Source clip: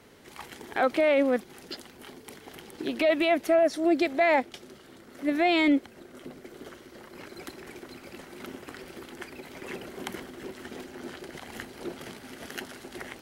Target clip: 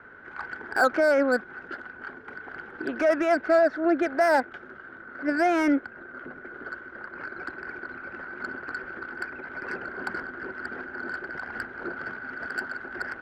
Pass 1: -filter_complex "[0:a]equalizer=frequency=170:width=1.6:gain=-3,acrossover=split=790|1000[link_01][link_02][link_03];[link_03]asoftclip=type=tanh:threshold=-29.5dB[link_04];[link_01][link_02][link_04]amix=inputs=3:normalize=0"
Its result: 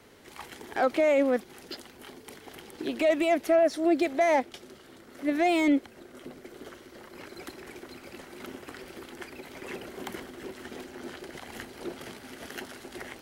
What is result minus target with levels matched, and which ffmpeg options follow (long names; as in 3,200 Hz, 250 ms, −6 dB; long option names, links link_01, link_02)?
2,000 Hz band −9.0 dB
-filter_complex "[0:a]lowpass=frequency=1500:width_type=q:width=14,equalizer=frequency=170:width=1.6:gain=-3,acrossover=split=790|1000[link_01][link_02][link_03];[link_03]asoftclip=type=tanh:threshold=-29.5dB[link_04];[link_01][link_02][link_04]amix=inputs=3:normalize=0"